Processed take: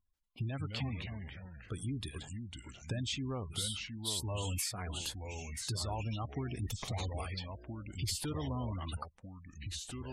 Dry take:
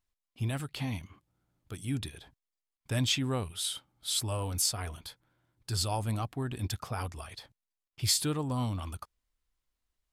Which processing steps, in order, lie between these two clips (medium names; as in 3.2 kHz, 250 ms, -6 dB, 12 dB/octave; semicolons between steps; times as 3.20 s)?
6.59–7.11 s: comb filter that takes the minimum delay 0.31 ms; in parallel at -8 dB: hard clipper -28 dBFS, distortion -12 dB; on the sum: compression 12:1, threshold -34 dBFS, peak gain reduction 13.5 dB; ever faster or slower copies 117 ms, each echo -3 st, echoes 3, each echo -6 dB; spectral gate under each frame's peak -25 dB strong